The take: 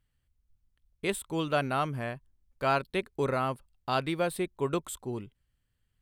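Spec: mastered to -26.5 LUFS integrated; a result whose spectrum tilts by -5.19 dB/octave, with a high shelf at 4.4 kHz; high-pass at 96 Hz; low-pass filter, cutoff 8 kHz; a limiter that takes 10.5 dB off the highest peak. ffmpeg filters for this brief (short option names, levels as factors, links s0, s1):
-af "highpass=96,lowpass=8000,highshelf=f=4400:g=-5,volume=3.35,alimiter=limit=0.178:level=0:latency=1"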